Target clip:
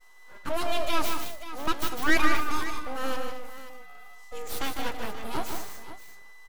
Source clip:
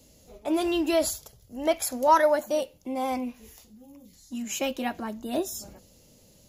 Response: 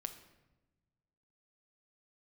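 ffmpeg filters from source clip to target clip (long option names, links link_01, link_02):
-filter_complex "[0:a]aeval=exprs='val(0)+0.00708*sin(2*PI*1000*n/s)':channel_layout=same,aeval=exprs='abs(val(0))':channel_layout=same,agate=range=-33dB:threshold=-40dB:ratio=3:detection=peak,asplit=2[link_01][link_02];[link_02]aecho=0:1:153|195|224|531:0.501|0.133|0.2|0.211[link_03];[link_01][link_03]amix=inputs=2:normalize=0"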